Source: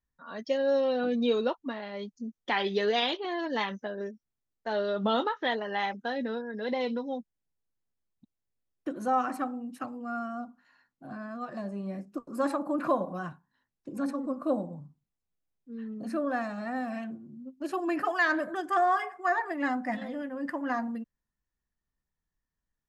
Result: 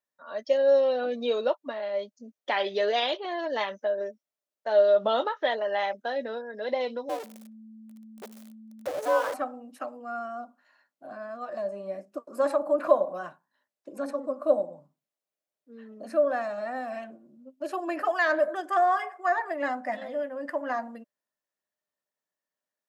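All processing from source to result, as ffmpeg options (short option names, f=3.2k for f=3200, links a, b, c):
-filter_complex "[0:a]asettb=1/sr,asplit=3[a][b][c];[a]atrim=end=7.094[d];[b]atrim=start=7.09:end=9.34,asetpts=PTS-STARTPTS,afade=t=in:d=0.004:c=qsin,afade=t=out:st=2.246:d=0.004:c=qsin,aeval=exprs='val(0)+0.5*0.0316*sgn(val(0))':c=same,aeval=exprs='val(0)*sin(2*PI*220*n/s)':c=same,asplit=2[e][f];[f]adelay=64,lowpass=f=1.2k:p=1,volume=-20dB,asplit=2[g][h];[h]adelay=64,lowpass=f=1.2k:p=1,volume=0.48,asplit=2[i][j];[j]adelay=64,lowpass=f=1.2k:p=1,volume=0.48,asplit=2[k][l];[l]adelay=64,lowpass=f=1.2k:p=1,volume=0.48[m];[e][g][i][k][m]amix=inputs=5:normalize=0,atrim=end_sample=99225[n];[c]atrim=start=9.336[o];[d][n]acrossfade=d=0.004:c1=hsin:c2=qsin[p];[p][o]acrossfade=d=0.004:c1=qsin:c2=hsin,highpass=370,equalizer=f=600:t=o:w=0.25:g=13.5"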